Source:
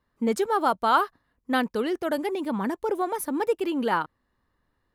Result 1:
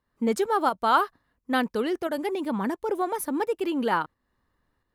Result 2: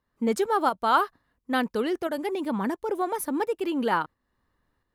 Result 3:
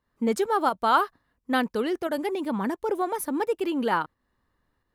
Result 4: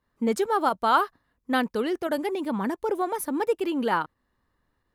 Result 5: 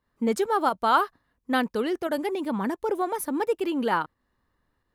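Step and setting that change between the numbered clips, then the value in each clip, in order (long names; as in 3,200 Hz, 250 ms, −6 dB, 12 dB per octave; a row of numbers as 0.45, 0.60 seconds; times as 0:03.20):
fake sidechain pumping, release: 285, 441, 181, 63, 115 milliseconds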